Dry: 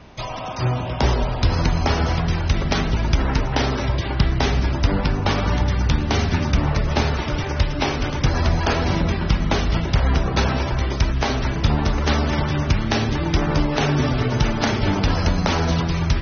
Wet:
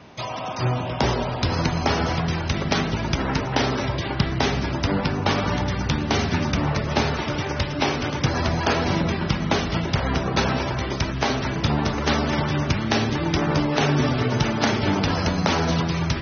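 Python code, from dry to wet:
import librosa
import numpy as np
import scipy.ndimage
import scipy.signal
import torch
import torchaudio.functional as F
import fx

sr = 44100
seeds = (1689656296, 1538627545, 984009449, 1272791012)

y = scipy.signal.sosfilt(scipy.signal.butter(2, 110.0, 'highpass', fs=sr, output='sos'), x)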